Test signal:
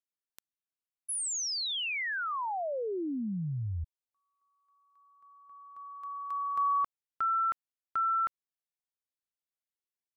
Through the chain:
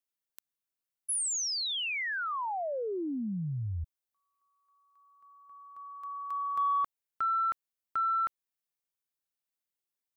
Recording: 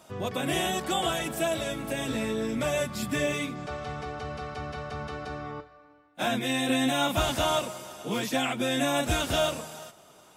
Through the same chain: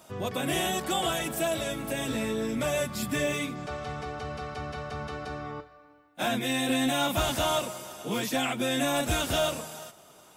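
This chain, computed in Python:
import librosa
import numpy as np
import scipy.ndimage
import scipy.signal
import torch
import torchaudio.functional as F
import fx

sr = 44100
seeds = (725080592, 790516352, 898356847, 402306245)

y = fx.high_shelf(x, sr, hz=11000.0, db=7.0)
y = 10.0 ** (-16.5 / 20.0) * np.tanh(y / 10.0 ** (-16.5 / 20.0))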